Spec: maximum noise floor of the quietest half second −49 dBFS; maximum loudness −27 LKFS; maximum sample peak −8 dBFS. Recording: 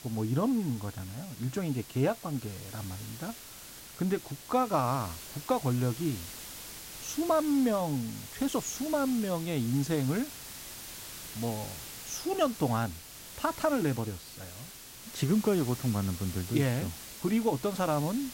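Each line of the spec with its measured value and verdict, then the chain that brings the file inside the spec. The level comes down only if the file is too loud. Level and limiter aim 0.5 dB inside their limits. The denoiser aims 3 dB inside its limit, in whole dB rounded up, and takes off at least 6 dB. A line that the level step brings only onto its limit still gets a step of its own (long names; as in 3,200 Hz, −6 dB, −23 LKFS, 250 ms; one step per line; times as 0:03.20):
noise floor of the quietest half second −48 dBFS: out of spec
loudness −31.5 LKFS: in spec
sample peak −15.5 dBFS: in spec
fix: broadband denoise 6 dB, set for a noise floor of −48 dBFS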